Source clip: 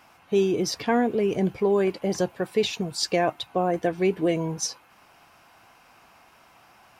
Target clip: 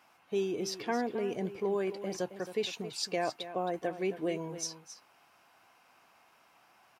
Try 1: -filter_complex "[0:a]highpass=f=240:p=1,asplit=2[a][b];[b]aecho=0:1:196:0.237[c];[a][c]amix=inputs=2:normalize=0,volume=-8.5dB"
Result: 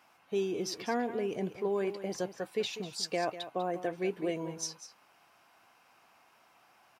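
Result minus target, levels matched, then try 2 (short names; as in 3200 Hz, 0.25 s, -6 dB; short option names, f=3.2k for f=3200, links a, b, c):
echo 73 ms early
-filter_complex "[0:a]highpass=f=240:p=1,asplit=2[a][b];[b]aecho=0:1:269:0.237[c];[a][c]amix=inputs=2:normalize=0,volume=-8.5dB"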